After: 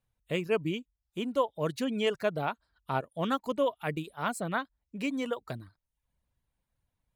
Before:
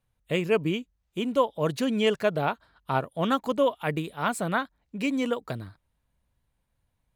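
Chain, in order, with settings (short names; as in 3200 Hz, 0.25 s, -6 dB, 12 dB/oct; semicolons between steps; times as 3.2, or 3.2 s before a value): reverb removal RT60 0.52 s; gain -4.5 dB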